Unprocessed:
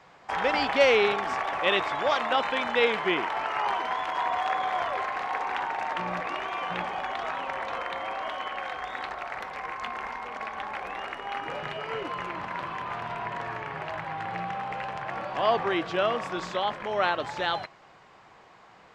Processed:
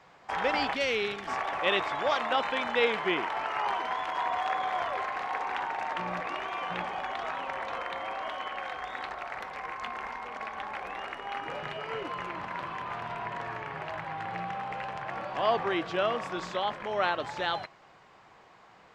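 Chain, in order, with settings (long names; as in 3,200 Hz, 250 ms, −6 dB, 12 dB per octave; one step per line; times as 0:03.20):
0:00.74–0:01.28: parametric band 840 Hz −13 dB 1.9 octaves
level −2.5 dB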